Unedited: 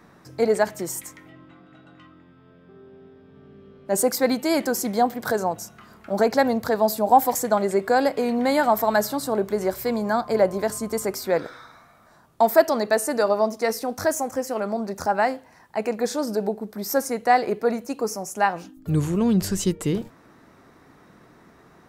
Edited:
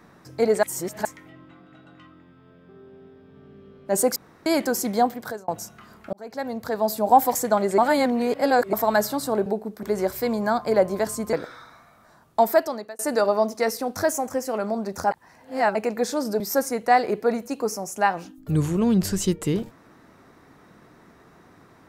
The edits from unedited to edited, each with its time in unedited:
0.63–1.05 reverse
4.16–4.46 room tone
5.04–5.48 fade out
6.13–7.12 fade in linear
7.78–8.73 reverse
10.96–11.35 cut
12.41–13.01 fade out
15.13–15.77 reverse
16.42–16.79 move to 9.46

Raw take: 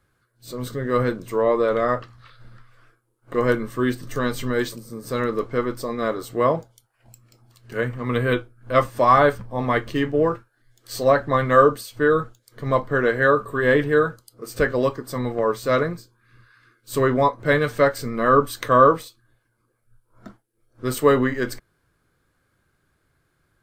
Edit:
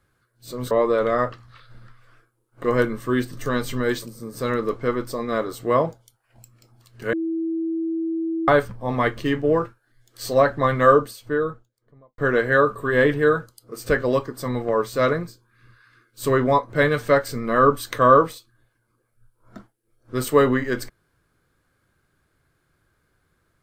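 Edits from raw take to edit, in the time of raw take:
0.71–1.41 cut
7.83–9.18 bleep 327 Hz -22 dBFS
11.49–12.88 studio fade out

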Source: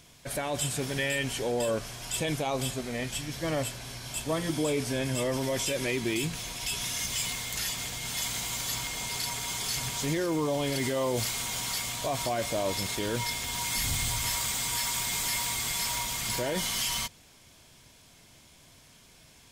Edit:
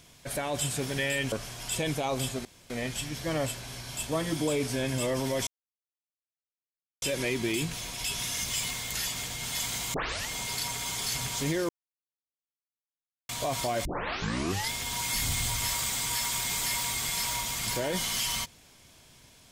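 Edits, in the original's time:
1.32–1.74 cut
2.87 insert room tone 0.25 s
5.64 insert silence 1.55 s
8.56 tape start 0.34 s
10.31–11.91 mute
12.47 tape start 0.85 s

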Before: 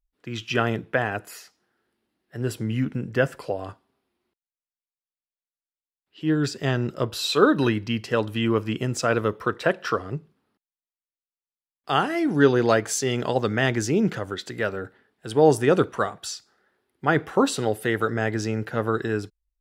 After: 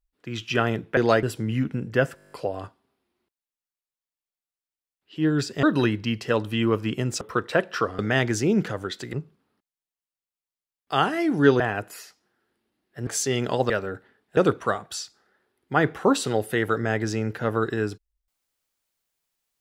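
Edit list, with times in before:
0.97–2.44 swap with 12.57–12.83
3.37 stutter 0.02 s, 9 plays
6.68–7.46 cut
9.04–9.32 cut
13.46–14.6 move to 10.1
15.27–15.69 cut

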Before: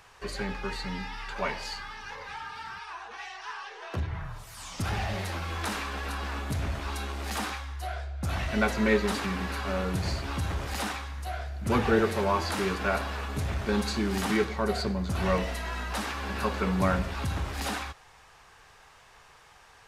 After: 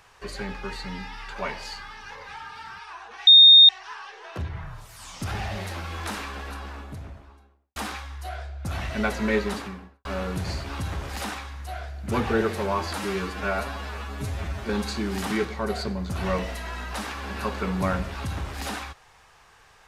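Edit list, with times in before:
3.27 add tone 3680 Hz -7.5 dBFS 0.42 s
5.67–7.34 studio fade out
8.99–9.63 studio fade out
12.52–13.69 stretch 1.5×

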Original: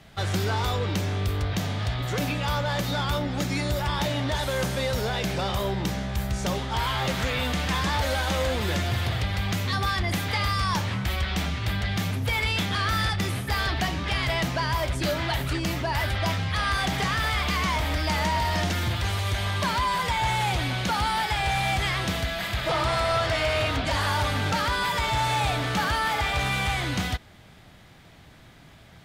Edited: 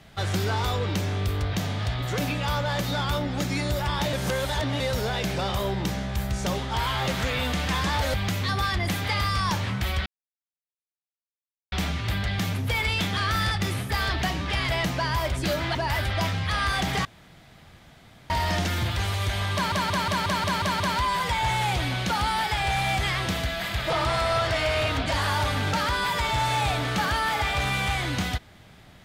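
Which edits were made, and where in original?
4.13–4.8 reverse
8.14–9.38 cut
11.3 insert silence 1.66 s
15.33–15.8 cut
17.1–18.35 room tone
19.59 stutter 0.18 s, 8 plays

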